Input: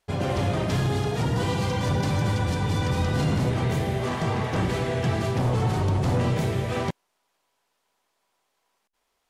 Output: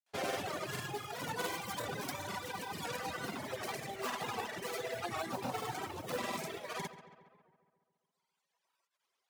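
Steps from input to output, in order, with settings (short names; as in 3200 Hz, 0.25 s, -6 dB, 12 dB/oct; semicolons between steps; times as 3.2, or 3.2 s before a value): tracing distortion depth 0.39 ms; reverb removal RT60 1.9 s; weighting filter A; reverb removal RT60 1.2 s; high shelf 10000 Hz +5.5 dB; modulation noise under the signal 15 dB; grains, pitch spread up and down by 0 st; darkening echo 0.138 s, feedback 63%, low-pass 3200 Hz, level -13 dB; record warp 78 rpm, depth 100 cents; gain -2.5 dB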